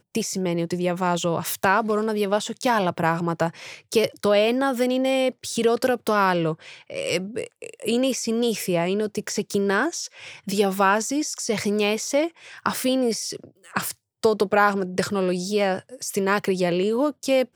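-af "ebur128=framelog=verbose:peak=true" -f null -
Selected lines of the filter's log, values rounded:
Integrated loudness:
  I:         -23.4 LUFS
  Threshold: -33.5 LUFS
Loudness range:
  LRA:         2.4 LU
  Threshold: -43.5 LUFS
  LRA low:   -24.8 LUFS
  LRA high:  -22.3 LUFS
True peak:
  Peak:       -5.6 dBFS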